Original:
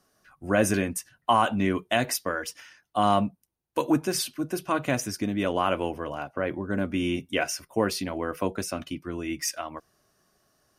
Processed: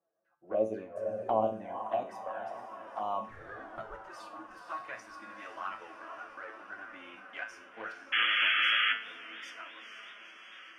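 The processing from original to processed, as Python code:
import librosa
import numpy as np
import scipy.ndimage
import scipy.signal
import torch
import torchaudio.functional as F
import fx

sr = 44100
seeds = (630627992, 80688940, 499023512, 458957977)

y = fx.median_filter(x, sr, points=25, at=(7.92, 8.55))
y = fx.echo_diffused(y, sr, ms=475, feedback_pct=67, wet_db=-8.0)
y = fx.filter_sweep_bandpass(y, sr, from_hz=600.0, to_hz=1500.0, start_s=1.16, end_s=4.93, q=2.3)
y = fx.ring_mod(y, sr, carrier_hz=fx.line((3.27, 760.0), (4.08, 220.0)), at=(3.27, 4.08), fade=0.02)
y = fx.dynamic_eq(y, sr, hz=550.0, q=1.4, threshold_db=-37.0, ratio=4.0, max_db=3)
y = fx.env_flanger(y, sr, rest_ms=6.0, full_db=-22.0)
y = fx.low_shelf(y, sr, hz=360.0, db=10.5, at=(0.97, 1.53))
y = fx.spec_paint(y, sr, seeds[0], shape='noise', start_s=8.12, length_s=0.81, low_hz=1200.0, high_hz=3400.0, level_db=-23.0)
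y = fx.comb_fb(y, sr, f0_hz=110.0, decay_s=0.42, harmonics='all', damping=0.0, mix_pct=80)
y = fx.echo_warbled(y, sr, ms=598, feedback_pct=76, rate_hz=2.8, cents=132, wet_db=-21.0)
y = F.gain(torch.from_numpy(y), 4.5).numpy()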